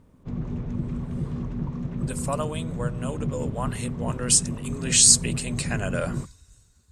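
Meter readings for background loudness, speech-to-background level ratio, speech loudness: −31.5 LKFS, 9.0 dB, −22.5 LKFS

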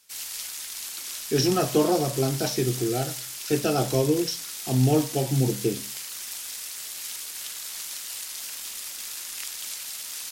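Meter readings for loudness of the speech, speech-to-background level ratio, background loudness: −25.0 LKFS, 7.5 dB, −32.5 LKFS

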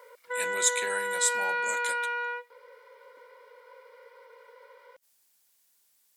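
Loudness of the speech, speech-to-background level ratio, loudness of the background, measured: −30.0 LKFS, 0.5 dB, −30.5 LKFS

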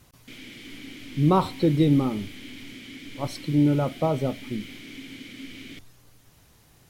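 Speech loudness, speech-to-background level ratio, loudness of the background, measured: −24.0 LKFS, 17.5 dB, −41.5 LKFS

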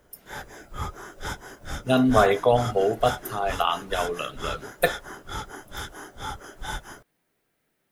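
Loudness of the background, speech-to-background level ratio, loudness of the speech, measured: −36.5 LKFS, 12.5 dB, −24.0 LKFS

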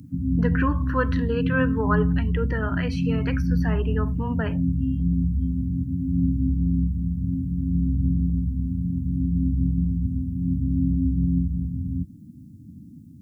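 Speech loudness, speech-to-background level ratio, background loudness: −29.5 LKFS, −5.0 dB, −24.5 LKFS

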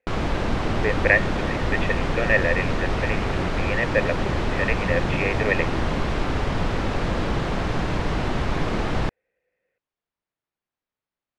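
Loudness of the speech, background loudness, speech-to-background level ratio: −25.5 LKFS, −26.0 LKFS, 0.5 dB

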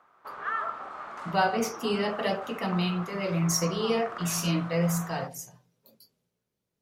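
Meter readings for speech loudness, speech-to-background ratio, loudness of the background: −28.5 LKFS, 10.0 dB, −38.5 LKFS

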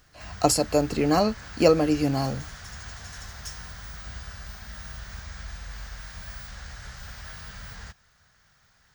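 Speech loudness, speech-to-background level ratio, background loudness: −23.5 LKFS, 17.0 dB, −40.5 LKFS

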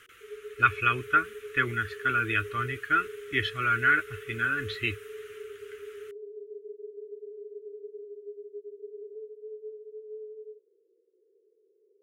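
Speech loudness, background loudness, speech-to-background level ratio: −27.0 LKFS, −43.5 LKFS, 16.5 dB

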